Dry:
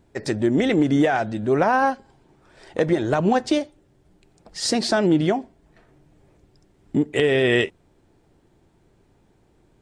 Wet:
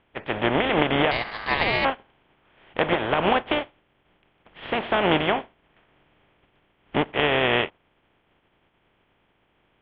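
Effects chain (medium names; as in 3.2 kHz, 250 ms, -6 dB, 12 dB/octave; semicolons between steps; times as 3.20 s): spectral contrast reduction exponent 0.36; Chebyshev low-pass 3.3 kHz, order 6; dynamic bell 690 Hz, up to +6 dB, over -35 dBFS, Q 0.73; 1.11–1.85 s: ring modulator 1.4 kHz; trim -4 dB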